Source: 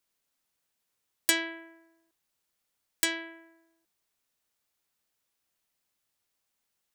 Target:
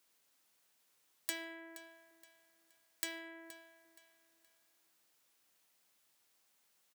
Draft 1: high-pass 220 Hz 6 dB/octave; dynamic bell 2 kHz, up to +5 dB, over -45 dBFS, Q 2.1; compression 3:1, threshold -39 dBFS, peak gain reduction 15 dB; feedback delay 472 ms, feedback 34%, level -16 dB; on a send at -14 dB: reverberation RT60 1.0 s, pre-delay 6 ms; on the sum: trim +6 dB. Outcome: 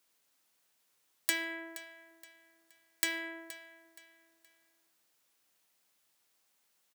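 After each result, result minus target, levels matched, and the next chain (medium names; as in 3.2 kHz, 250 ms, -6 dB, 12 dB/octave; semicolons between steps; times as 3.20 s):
compression: peak gain reduction -7 dB; 500 Hz band -3.5 dB
high-pass 220 Hz 6 dB/octave; dynamic bell 2 kHz, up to +5 dB, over -45 dBFS, Q 2.1; compression 3:1, threshold -50.5 dBFS, peak gain reduction 23 dB; feedback delay 472 ms, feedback 34%, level -16 dB; on a send at -14 dB: reverberation RT60 1.0 s, pre-delay 6 ms; on the sum: trim +6 dB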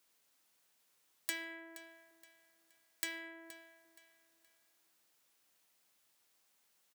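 500 Hz band -3.0 dB
high-pass 220 Hz 6 dB/octave; dynamic bell 560 Hz, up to +5 dB, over -45 dBFS, Q 2.1; compression 3:1, threshold -50.5 dBFS, peak gain reduction 22.5 dB; feedback delay 472 ms, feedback 34%, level -16 dB; on a send at -14 dB: reverberation RT60 1.0 s, pre-delay 6 ms; on the sum: trim +6 dB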